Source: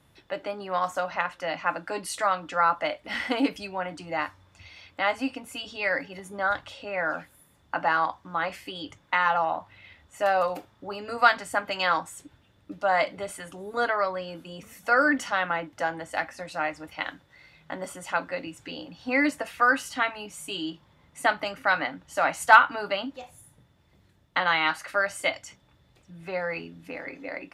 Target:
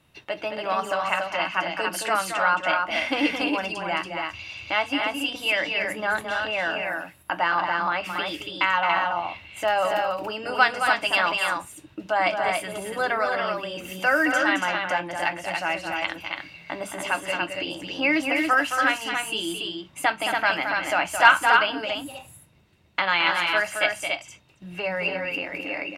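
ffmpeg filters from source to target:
-filter_complex "[0:a]asetrate=46746,aresample=44100,equalizer=f=2.7k:w=6.7:g=11.5,bandreject=f=50:t=h:w=6,bandreject=f=100:t=h:w=6,bandreject=f=150:t=h:w=6,bandreject=f=200:t=h:w=6,bandreject=f=250:t=h:w=6,asplit=2[a][b];[b]acompressor=threshold=-39dB:ratio=6,volume=2dB[c];[a][c]amix=inputs=2:normalize=0,agate=range=-7dB:threshold=-47dB:ratio=16:detection=peak,asplit=2[d][e];[e]aecho=0:1:218.7|282.8:0.447|0.631[f];[d][f]amix=inputs=2:normalize=0,volume=-1dB"

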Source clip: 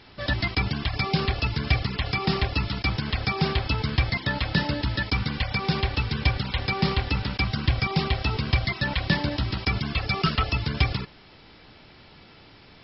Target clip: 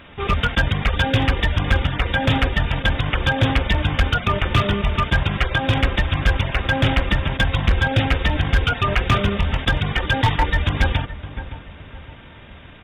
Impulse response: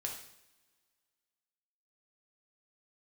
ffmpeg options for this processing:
-filter_complex "[0:a]asetrate=30296,aresample=44100,atempo=1.45565,asplit=2[a][b];[b]adelay=565,lowpass=f=1.3k:p=1,volume=-13dB,asplit=2[c][d];[d]adelay=565,lowpass=f=1.3k:p=1,volume=0.38,asplit=2[e][f];[f]adelay=565,lowpass=f=1.3k:p=1,volume=0.38,asplit=2[g][h];[h]adelay=565,lowpass=f=1.3k:p=1,volume=0.38[i];[a][c][e][g][i]amix=inputs=5:normalize=0,asoftclip=type=hard:threshold=-17.5dB,volume=7.5dB"

